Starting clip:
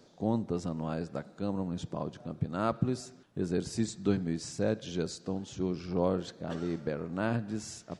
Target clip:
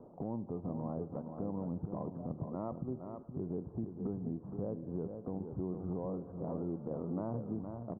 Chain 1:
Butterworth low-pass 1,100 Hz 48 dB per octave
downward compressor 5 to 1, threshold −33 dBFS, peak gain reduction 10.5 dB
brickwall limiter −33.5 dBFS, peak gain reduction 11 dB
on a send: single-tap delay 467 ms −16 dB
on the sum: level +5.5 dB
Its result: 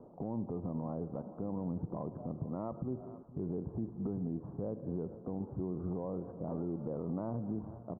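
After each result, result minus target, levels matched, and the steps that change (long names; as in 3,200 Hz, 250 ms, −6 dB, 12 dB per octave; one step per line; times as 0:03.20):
echo-to-direct −9 dB; downward compressor: peak gain reduction −5 dB
change: single-tap delay 467 ms −7 dB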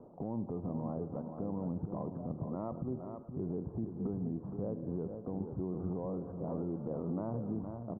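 downward compressor: peak gain reduction −5 dB
change: downward compressor 5 to 1, threshold −39.5 dBFS, peak gain reduction 16 dB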